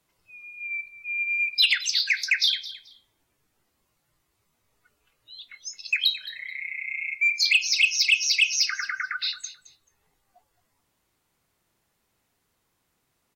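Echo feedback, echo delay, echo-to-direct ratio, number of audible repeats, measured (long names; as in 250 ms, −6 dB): 20%, 217 ms, −16.0 dB, 2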